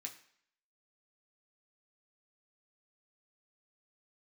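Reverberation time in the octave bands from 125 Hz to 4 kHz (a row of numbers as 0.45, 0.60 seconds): 0.50, 0.55, 0.60, 0.65, 0.65, 0.60 seconds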